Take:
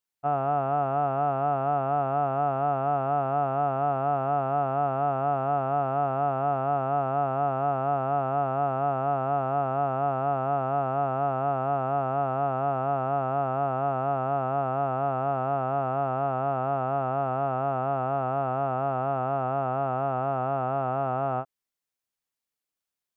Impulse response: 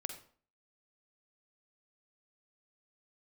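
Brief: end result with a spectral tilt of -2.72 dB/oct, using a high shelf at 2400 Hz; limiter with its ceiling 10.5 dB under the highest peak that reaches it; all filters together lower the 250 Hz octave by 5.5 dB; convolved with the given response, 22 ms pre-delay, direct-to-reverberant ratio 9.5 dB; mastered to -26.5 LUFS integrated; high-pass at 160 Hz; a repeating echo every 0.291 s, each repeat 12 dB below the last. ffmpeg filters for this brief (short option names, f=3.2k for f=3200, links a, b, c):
-filter_complex "[0:a]highpass=160,equalizer=f=250:t=o:g=-5.5,highshelf=f=2.4k:g=6,alimiter=level_in=2.5dB:limit=-24dB:level=0:latency=1,volume=-2.5dB,aecho=1:1:291|582|873:0.251|0.0628|0.0157,asplit=2[a][b];[1:a]atrim=start_sample=2205,adelay=22[c];[b][c]afir=irnorm=-1:irlink=0,volume=-8dB[d];[a][d]amix=inputs=2:normalize=0,volume=8dB"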